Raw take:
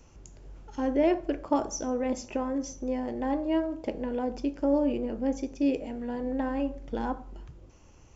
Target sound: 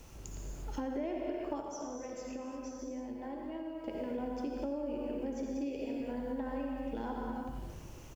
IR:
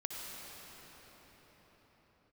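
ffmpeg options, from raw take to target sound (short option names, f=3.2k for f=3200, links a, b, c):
-filter_complex "[0:a]aecho=1:1:87|174|261|348:0.224|0.101|0.0453|0.0204[a];[1:a]atrim=start_sample=2205,afade=t=out:st=0.42:d=0.01,atrim=end_sample=18963[b];[a][b]afir=irnorm=-1:irlink=0,acrusher=bits=10:mix=0:aa=0.000001,acompressor=threshold=-41dB:ratio=6,asettb=1/sr,asplit=3[c][d][e];[c]atrim=end=1.614[f];[d]atrim=start=1.61:end=3.88,asetpts=PTS-STARTPTS,afade=t=in:d=0.004:c=qsin,afade=t=out:st=2.266:d=0.004:c=qsin,flanger=delay=8.6:depth=5.9:regen=68:speed=2:shape=sinusoidal[g];[e]atrim=start=3.876[h];[f][g]acrossfade=d=0.004:c1=hsin:c2=qsin[i];[i][h]acrossfade=d=0.004:c1=qsin:c2=hsin,volume=5.5dB"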